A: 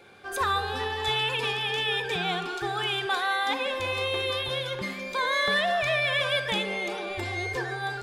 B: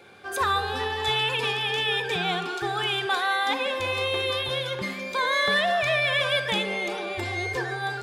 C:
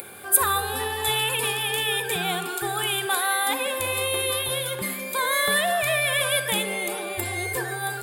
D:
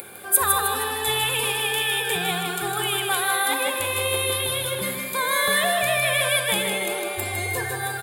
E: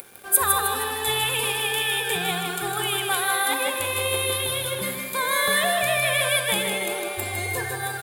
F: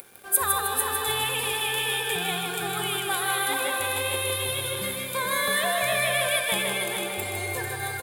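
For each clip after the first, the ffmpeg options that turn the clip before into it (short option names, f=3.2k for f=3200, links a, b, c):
-af "highpass=61,volume=2dB"
-af "acompressor=mode=upward:threshold=-37dB:ratio=2.5,aexciter=amount=14.8:drive=5.5:freq=8.5k"
-af "aecho=1:1:156|312|468|624|780|936:0.562|0.27|0.13|0.0622|0.0299|0.0143"
-af "aeval=exprs='sgn(val(0))*max(abs(val(0))-0.00631,0)':c=same"
-af "aecho=1:1:445:0.531,volume=-3.5dB"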